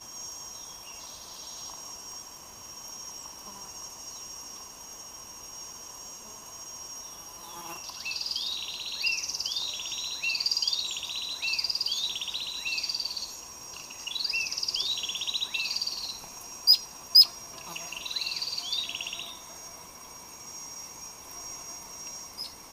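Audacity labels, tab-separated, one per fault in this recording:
2.120000	2.120000	click

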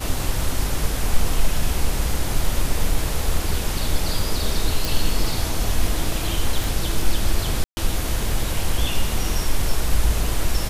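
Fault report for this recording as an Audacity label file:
4.850000	4.850000	click
6.640000	6.640000	click
7.640000	7.770000	drop-out 130 ms

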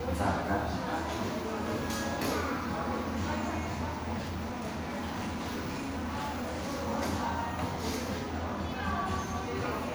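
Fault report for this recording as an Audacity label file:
4.170000	6.880000	clipping −31.5 dBFS

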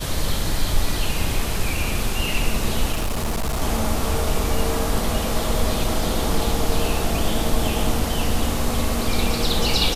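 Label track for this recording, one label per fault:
2.920000	3.620000	clipping −19 dBFS

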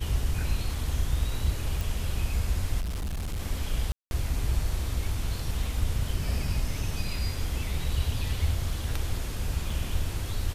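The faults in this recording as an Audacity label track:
1.810000	1.810000	click
2.800000	3.390000	clipping −28.5 dBFS
3.920000	4.110000	drop-out 191 ms
9.700000	9.700000	drop-out 2.7 ms

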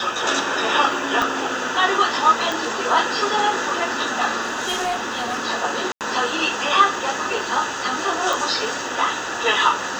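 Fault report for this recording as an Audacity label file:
1.220000	1.220000	click −8 dBFS
2.520000	2.520000	click
4.410000	5.420000	clipping −19.5 dBFS
5.920000	6.010000	drop-out 88 ms
8.330000	8.330000	click

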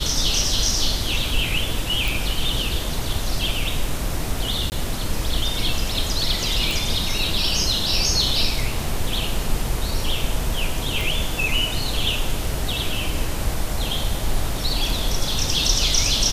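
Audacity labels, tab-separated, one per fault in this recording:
2.080000	2.080000	click
4.700000	4.720000	drop-out 19 ms
6.710000	6.710000	click
11.010000	11.010000	click

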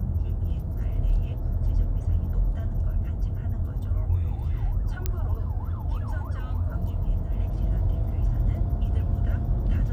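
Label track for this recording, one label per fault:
5.060000	5.060000	click −12 dBFS

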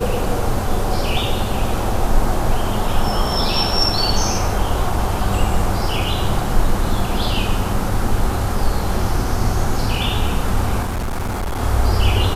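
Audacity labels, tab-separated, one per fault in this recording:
10.820000	11.610000	clipping −19 dBFS

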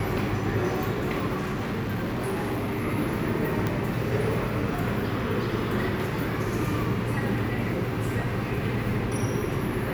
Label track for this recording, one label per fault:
1.400000	2.860000	clipping −25 dBFS
3.670000	3.670000	click −14 dBFS

